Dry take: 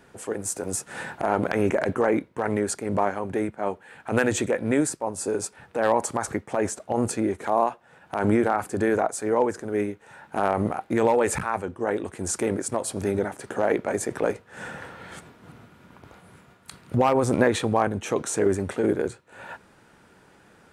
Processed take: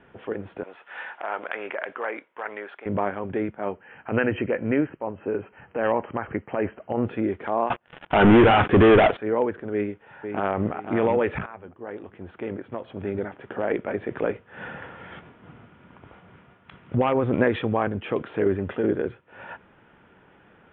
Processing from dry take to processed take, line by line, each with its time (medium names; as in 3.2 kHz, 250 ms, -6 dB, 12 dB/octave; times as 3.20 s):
0.63–2.86 s: high-pass 790 Hz
3.64–7.05 s: brick-wall FIR low-pass 3.2 kHz
7.70–9.17 s: waveshaping leveller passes 5
9.73–10.73 s: echo throw 500 ms, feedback 35%, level -8 dB
11.46–14.26 s: fade in, from -14 dB
18.53–19.02 s: band-stop 2.2 kHz
whole clip: steep low-pass 3.4 kHz 96 dB/octave; dynamic bell 840 Hz, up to -4 dB, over -38 dBFS, Q 1.7